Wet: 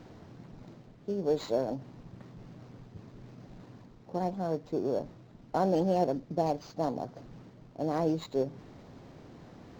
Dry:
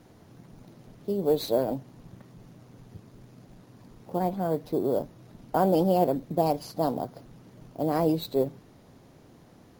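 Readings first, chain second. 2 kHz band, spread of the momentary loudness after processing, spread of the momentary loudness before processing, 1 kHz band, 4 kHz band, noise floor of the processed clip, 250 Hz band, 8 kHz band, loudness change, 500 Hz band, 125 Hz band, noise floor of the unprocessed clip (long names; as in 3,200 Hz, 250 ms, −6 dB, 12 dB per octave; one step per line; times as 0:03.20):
−3.5 dB, 22 LU, 12 LU, −4.5 dB, −6.5 dB, −55 dBFS, −4.5 dB, can't be measured, −4.5 dB, −4.5 dB, −4.0 dB, −55 dBFS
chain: reversed playback
upward compression, threshold −36 dBFS
reversed playback
linearly interpolated sample-rate reduction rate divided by 4×
level −4.5 dB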